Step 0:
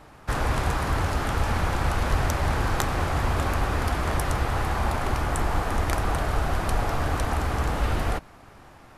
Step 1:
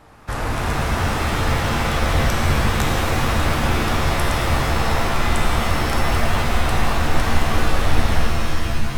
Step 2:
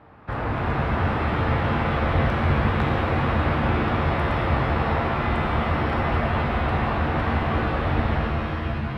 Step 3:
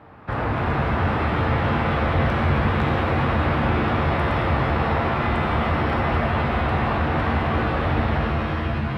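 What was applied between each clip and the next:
pitch-shifted reverb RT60 3.4 s, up +7 st, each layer -2 dB, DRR -1 dB
high-pass 68 Hz; distance through air 440 m
high-pass 49 Hz; in parallel at -2 dB: peak limiter -20 dBFS, peak gain reduction 11 dB; on the sum: trim -1.5 dB

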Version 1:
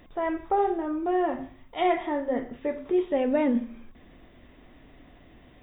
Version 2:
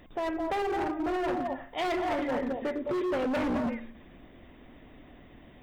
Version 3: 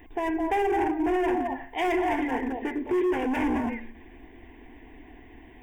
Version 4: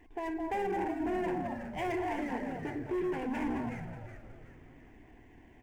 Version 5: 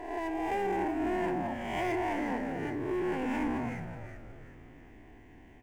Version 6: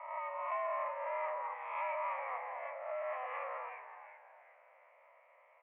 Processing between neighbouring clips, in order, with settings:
repeats whose band climbs or falls 106 ms, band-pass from 270 Hz, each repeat 1.4 oct, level 0 dB; hard clipper -25 dBFS, distortion -8 dB; harmonic-percussive split percussive +4 dB; trim -2.5 dB
static phaser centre 850 Hz, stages 8; trim +6 dB
median filter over 9 samples; on a send: frequency-shifting echo 370 ms, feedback 40%, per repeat -130 Hz, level -9 dB; on the sum: trim -8.5 dB
reverse spectral sustain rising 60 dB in 1.03 s
CVSD coder 64 kbps; mistuned SSB +250 Hz 380–2100 Hz; trim -4 dB

